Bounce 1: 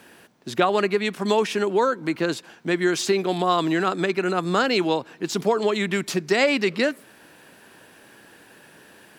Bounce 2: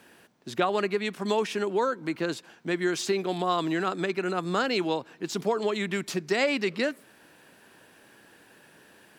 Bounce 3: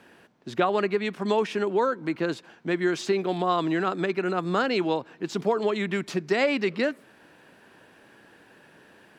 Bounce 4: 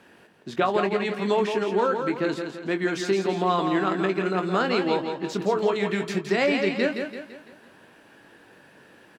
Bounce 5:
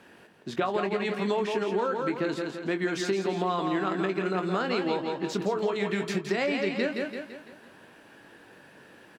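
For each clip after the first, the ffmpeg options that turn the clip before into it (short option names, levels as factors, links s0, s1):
-af "equalizer=f=11000:w=6.3:g=-2,volume=0.531"
-af "lowpass=f=2900:p=1,volume=1.33"
-filter_complex "[0:a]asplit=2[s0][s1];[s1]adelay=21,volume=0.376[s2];[s0][s2]amix=inputs=2:normalize=0,asplit=2[s3][s4];[s4]aecho=0:1:168|336|504|672|840:0.473|0.213|0.0958|0.0431|0.0194[s5];[s3][s5]amix=inputs=2:normalize=0"
-af "acompressor=threshold=0.0562:ratio=3"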